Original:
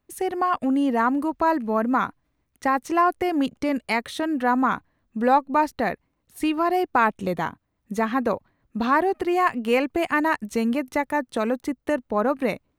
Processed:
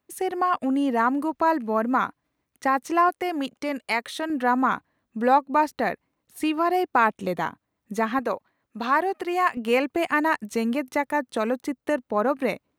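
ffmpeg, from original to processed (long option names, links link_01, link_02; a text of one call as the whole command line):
ffmpeg -i in.wav -af "asetnsamples=nb_out_samples=441:pad=0,asendcmd='3.09 highpass f 490;4.3 highpass f 190;8.19 highpass f 520;9.57 highpass f 190',highpass=frequency=200:poles=1" out.wav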